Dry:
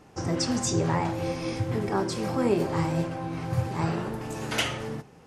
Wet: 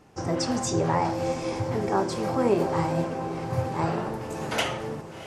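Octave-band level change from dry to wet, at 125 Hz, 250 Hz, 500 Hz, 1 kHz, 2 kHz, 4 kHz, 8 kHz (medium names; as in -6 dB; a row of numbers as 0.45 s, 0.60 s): -1.5 dB, 0.0 dB, +3.0 dB, +4.0 dB, 0.0 dB, -1.5 dB, -1.5 dB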